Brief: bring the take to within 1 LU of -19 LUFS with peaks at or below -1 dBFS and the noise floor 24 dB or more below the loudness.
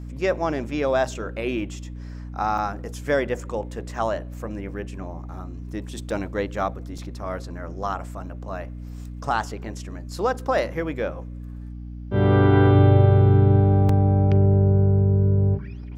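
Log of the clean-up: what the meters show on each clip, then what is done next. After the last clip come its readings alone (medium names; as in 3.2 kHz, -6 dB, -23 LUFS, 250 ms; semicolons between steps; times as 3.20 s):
dropouts 4; longest dropout 3.6 ms; hum 60 Hz; highest harmonic 300 Hz; hum level -33 dBFS; loudness -21.5 LUFS; peak level -4.5 dBFS; loudness target -19.0 LUFS
-> interpolate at 2.58/6.10/6.98/13.89 s, 3.6 ms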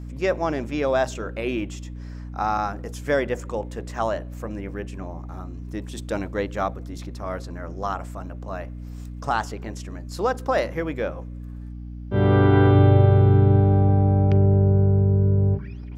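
dropouts 0; hum 60 Hz; highest harmonic 300 Hz; hum level -33 dBFS
-> de-hum 60 Hz, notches 5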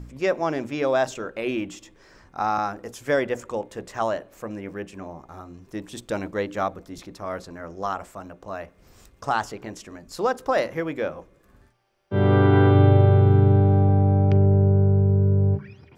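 hum not found; loudness -21.5 LUFS; peak level -5.5 dBFS; loudness target -19.0 LUFS
-> trim +2.5 dB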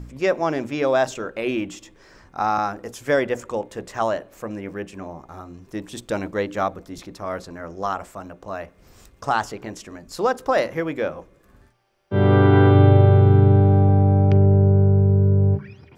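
loudness -19.0 LUFS; peak level -3.0 dBFS; noise floor -55 dBFS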